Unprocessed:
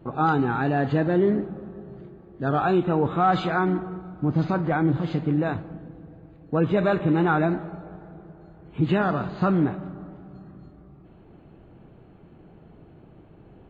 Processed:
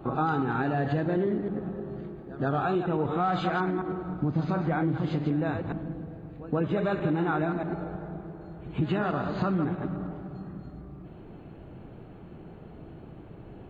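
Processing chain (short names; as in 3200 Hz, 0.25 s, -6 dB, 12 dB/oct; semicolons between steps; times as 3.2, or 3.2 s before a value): reverse delay 0.106 s, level -7 dB; compressor 4:1, threshold -29 dBFS, peak gain reduction 11.5 dB; pre-echo 0.129 s -16.5 dB; gain +3.5 dB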